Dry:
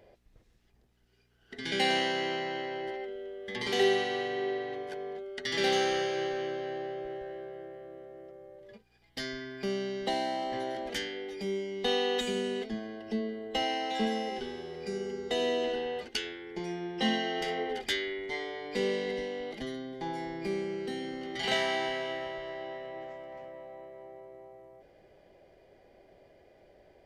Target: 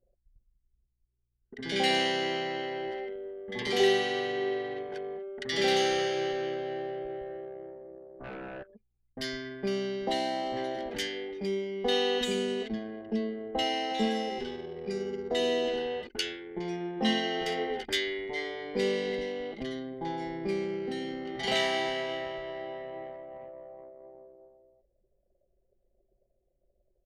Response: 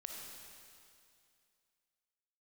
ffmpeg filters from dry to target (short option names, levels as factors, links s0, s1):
-filter_complex "[0:a]asplit=3[s0][s1][s2];[s0]afade=t=out:st=8.19:d=0.02[s3];[s1]aeval=exprs='0.0112*sin(PI/2*3.98*val(0)/0.0112)':c=same,afade=t=in:st=8.19:d=0.02,afade=t=out:st=8.62:d=0.02[s4];[s2]afade=t=in:st=8.62:d=0.02[s5];[s3][s4][s5]amix=inputs=3:normalize=0,acrossover=split=1200[s6][s7];[s7]adelay=40[s8];[s6][s8]amix=inputs=2:normalize=0,anlmdn=0.0631,volume=1.26"